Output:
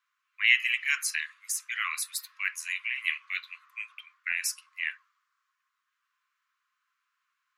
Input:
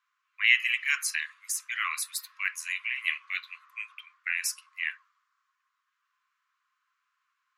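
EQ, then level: high-pass 1.1 kHz; 0.0 dB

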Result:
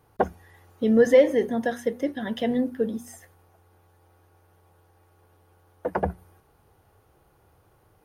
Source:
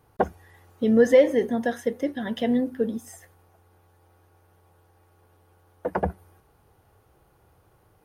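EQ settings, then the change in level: hum notches 60/120/180/240 Hz; band-stop 7.8 kHz, Q 20; 0.0 dB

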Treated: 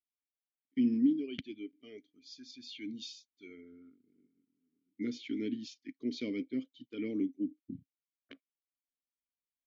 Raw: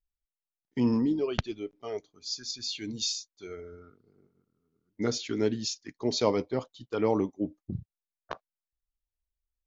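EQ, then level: dynamic bell 1 kHz, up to -6 dB, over -46 dBFS, Q 1.2; vowel filter i; +4.5 dB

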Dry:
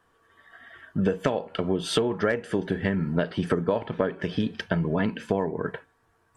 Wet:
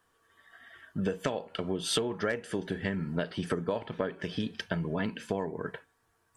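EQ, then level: treble shelf 3.3 kHz +10 dB; -7.0 dB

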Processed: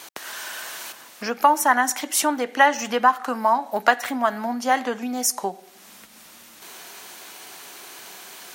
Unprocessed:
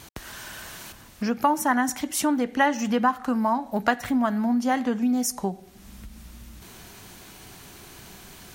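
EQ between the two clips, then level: high-pass 490 Hz 12 dB/octave; +6.0 dB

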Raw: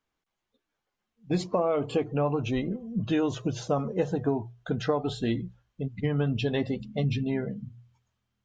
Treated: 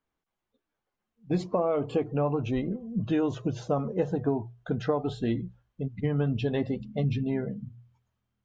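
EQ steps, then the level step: treble shelf 2.2 kHz -8.5 dB; 0.0 dB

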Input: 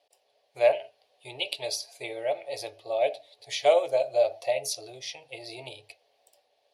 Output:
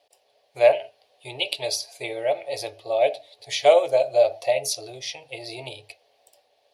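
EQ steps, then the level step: bass shelf 100 Hz +5.5 dB; +5.0 dB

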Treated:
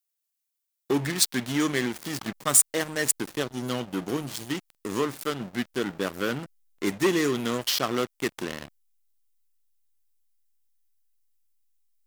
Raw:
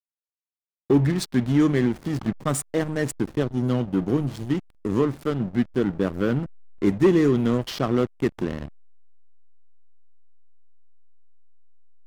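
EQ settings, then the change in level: tilt EQ +4 dB/octave; 0.0 dB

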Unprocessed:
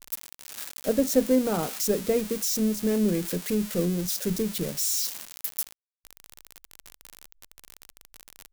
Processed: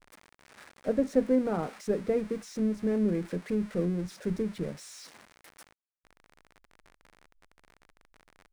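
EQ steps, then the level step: distance through air 120 m; high-order bell 4.5 kHz -8.5 dB; -3.0 dB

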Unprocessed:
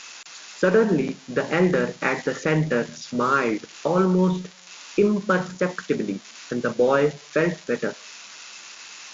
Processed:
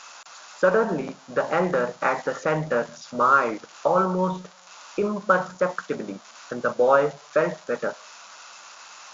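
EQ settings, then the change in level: high-order bell 880 Hz +11.5 dB; treble shelf 5.8 kHz +4.5 dB; -7.0 dB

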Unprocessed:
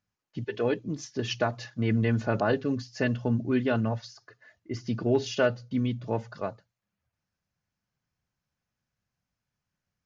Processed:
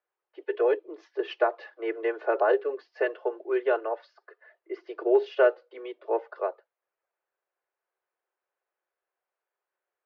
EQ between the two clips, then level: steep high-pass 350 Hz 96 dB/octave; distance through air 410 m; treble shelf 2.9 kHz -10 dB; +6.0 dB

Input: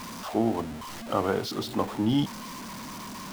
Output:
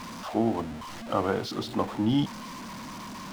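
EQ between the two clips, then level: treble shelf 8.6 kHz -10 dB; band-stop 410 Hz, Q 12; 0.0 dB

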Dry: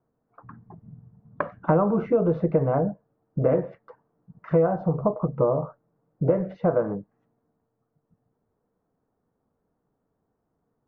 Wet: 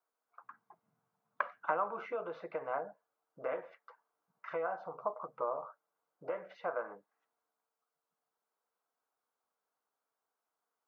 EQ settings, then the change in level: high-pass 1.3 kHz 12 dB/octave; band-stop 1.8 kHz, Q 13; 0.0 dB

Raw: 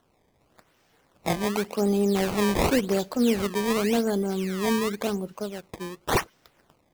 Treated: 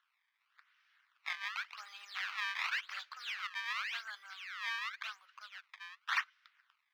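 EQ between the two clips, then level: steep high-pass 1.3 kHz 36 dB/octave; distance through air 270 m; 0.0 dB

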